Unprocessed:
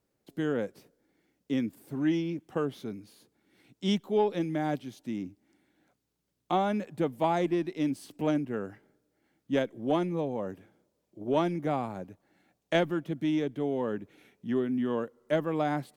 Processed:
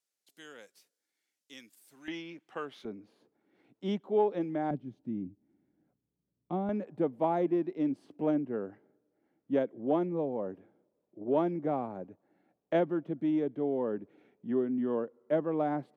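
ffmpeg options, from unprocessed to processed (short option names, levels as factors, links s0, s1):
-af "asetnsamples=n=441:p=0,asendcmd='2.08 bandpass f 2000;2.85 bandpass f 570;4.71 bandpass f 160;6.69 bandpass f 430',bandpass=f=7500:t=q:w=0.67:csg=0"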